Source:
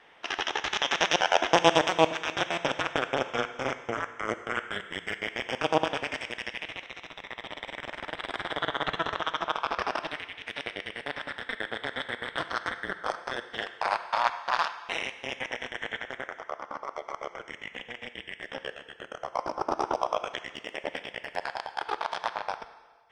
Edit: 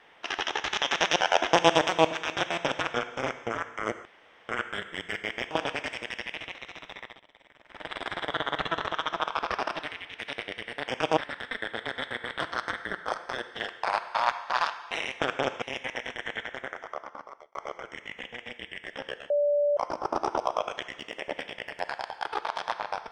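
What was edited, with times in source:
0:02.94–0:03.36: move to 0:15.18
0:04.47: splice in room tone 0.44 s
0:05.49–0:05.79: move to 0:11.16
0:07.25–0:08.19: duck −19 dB, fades 0.24 s
0:16.46–0:17.11: fade out linear
0:18.86–0:19.33: beep over 582 Hz −21 dBFS

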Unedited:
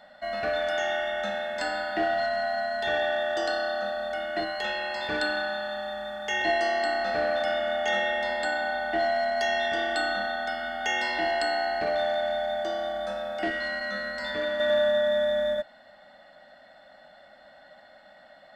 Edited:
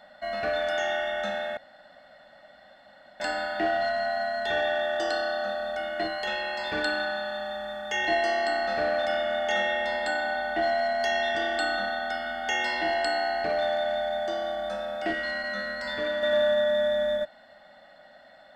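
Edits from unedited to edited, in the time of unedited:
0:01.57: splice in room tone 1.63 s

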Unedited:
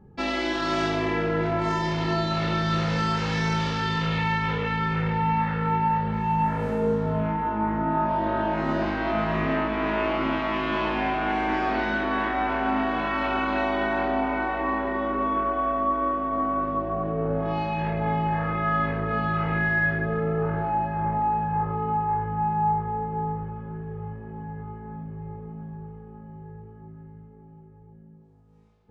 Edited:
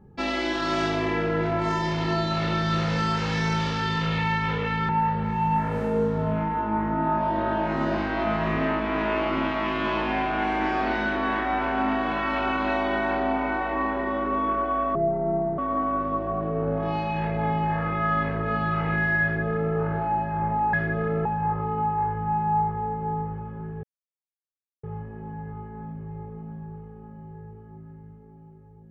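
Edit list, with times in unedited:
0:04.89–0:05.77: remove
0:15.83–0:16.21: play speed 60%
0:19.85–0:20.37: duplicate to 0:21.36
0:23.94: splice in silence 1.00 s

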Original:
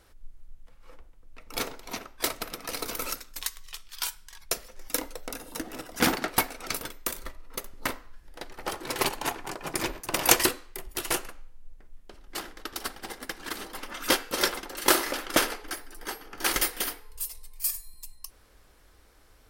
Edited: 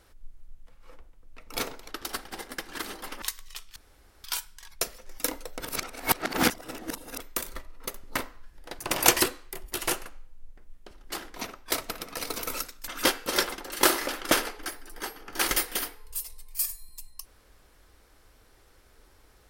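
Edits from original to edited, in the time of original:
0:01.88–0:03.40: swap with 0:12.59–0:13.93
0:03.94: splice in room tone 0.48 s
0:05.30–0:06.90: reverse
0:08.49–0:10.02: remove

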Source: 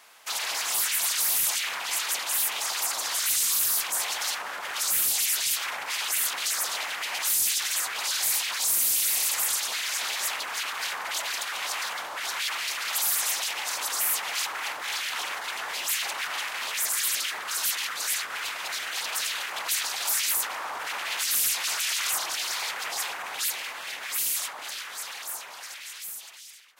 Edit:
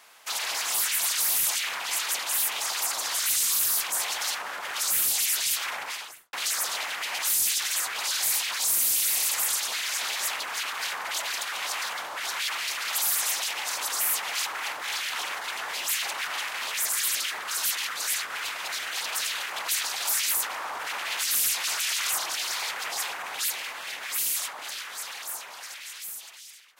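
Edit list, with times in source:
0:05.78–0:06.33: fade out and dull

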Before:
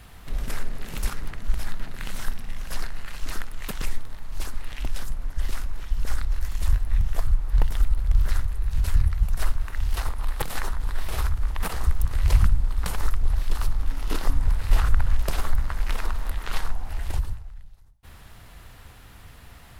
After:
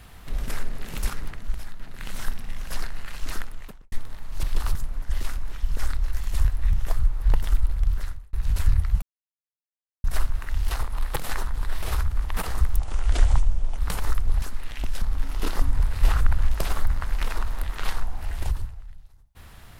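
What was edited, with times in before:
0:01.21–0:02.23: duck −8.5 dB, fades 0.49 s
0:03.38–0:03.92: fade out and dull
0:04.43–0:05.03: swap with 0:13.38–0:13.70
0:07.97–0:08.61: fade out
0:09.30: splice in silence 1.02 s
0:12.04–0:12.74: play speed 70%

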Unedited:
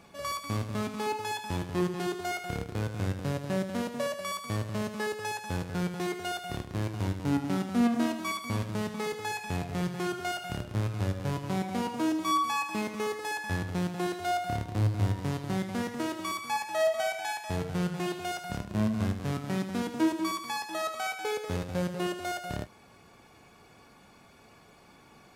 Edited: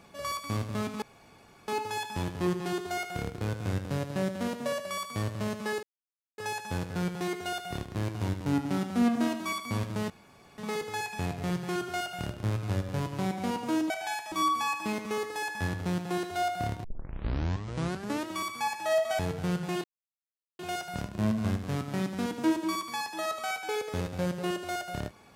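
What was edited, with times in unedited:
0:01.02: splice in room tone 0.66 s
0:05.17: splice in silence 0.55 s
0:08.89: splice in room tone 0.48 s
0:14.73: tape start 1.42 s
0:17.08–0:17.50: move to 0:12.21
0:18.15: splice in silence 0.75 s

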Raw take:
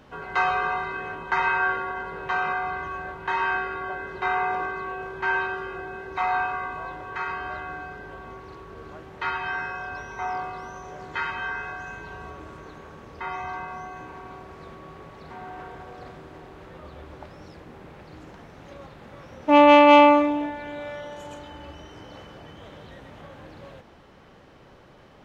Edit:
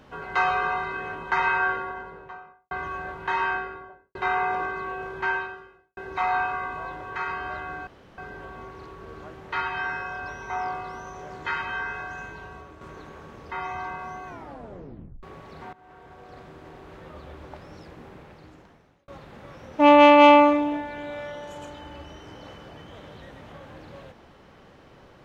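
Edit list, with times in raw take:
0:01.55–0:02.71: fade out and dull
0:03.37–0:04.15: fade out and dull
0:05.24–0:05.97: fade out quadratic
0:07.87: splice in room tone 0.31 s
0:11.89–0:12.50: fade out, to −7 dB
0:13.96: tape stop 0.96 s
0:15.42–0:16.86: fade in equal-power, from −19.5 dB
0:17.74–0:18.77: fade out

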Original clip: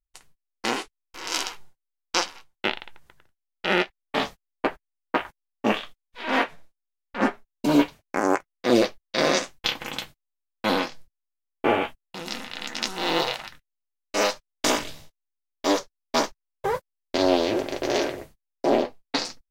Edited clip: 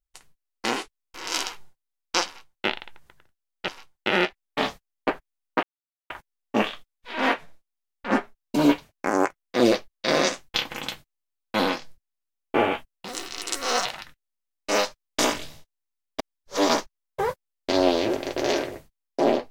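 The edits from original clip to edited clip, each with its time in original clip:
0:02.26–0:02.69: duplicate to 0:03.68
0:05.20: splice in silence 0.47 s
0:12.18–0:13.31: play speed 146%
0:15.65–0:16.15: reverse

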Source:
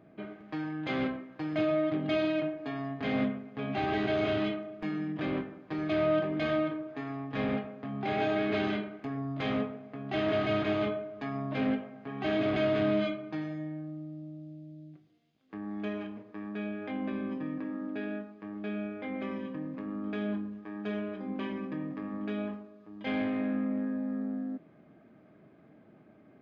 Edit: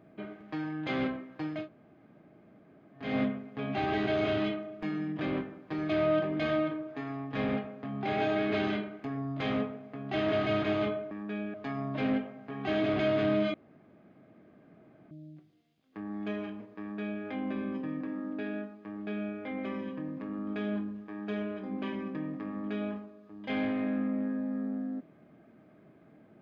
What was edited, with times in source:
0:01.57–0:03.04: fill with room tone, crossfade 0.24 s
0:13.11–0:14.68: fill with room tone
0:16.37–0:16.80: duplicate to 0:11.11

